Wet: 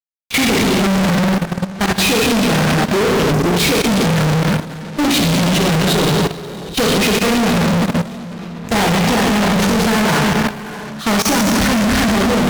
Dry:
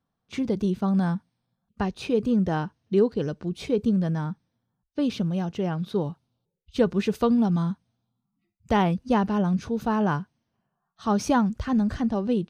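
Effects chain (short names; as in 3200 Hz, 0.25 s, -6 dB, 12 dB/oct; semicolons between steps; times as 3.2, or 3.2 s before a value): compressor 4:1, threshold -27 dBFS, peak gain reduction 10.5 dB; sample leveller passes 2; ten-band EQ 1000 Hz -3 dB, 2000 Hz +7 dB, 4000 Hz +4 dB; plate-style reverb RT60 2.5 s, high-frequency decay 0.95×, DRR -2.5 dB; spectral delete 3.31–3.52, 450–4600 Hz; notches 60/120/180 Hz; fuzz box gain 45 dB, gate -48 dBFS; level quantiser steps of 14 dB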